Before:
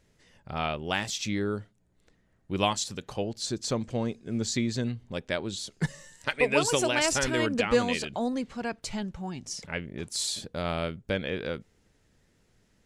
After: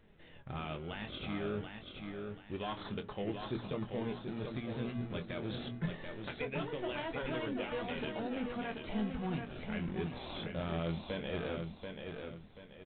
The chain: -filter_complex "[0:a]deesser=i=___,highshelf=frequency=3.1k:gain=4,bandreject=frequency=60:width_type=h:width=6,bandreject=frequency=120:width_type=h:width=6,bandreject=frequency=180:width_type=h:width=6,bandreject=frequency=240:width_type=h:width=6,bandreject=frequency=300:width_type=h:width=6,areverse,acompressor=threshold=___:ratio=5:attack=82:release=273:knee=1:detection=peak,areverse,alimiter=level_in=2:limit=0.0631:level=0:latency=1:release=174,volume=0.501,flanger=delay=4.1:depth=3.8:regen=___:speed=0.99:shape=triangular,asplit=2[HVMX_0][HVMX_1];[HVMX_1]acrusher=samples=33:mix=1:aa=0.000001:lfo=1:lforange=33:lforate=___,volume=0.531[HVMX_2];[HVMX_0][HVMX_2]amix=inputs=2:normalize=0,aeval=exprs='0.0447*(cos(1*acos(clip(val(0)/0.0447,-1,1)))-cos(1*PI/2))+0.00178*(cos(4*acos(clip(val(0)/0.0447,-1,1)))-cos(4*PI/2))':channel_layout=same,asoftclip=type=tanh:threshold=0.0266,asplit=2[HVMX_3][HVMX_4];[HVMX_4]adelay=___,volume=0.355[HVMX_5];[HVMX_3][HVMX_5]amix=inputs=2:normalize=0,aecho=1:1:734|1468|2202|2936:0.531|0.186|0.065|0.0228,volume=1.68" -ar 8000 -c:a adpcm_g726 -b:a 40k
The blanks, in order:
0.8, 0.00891, 57, 0.25, 24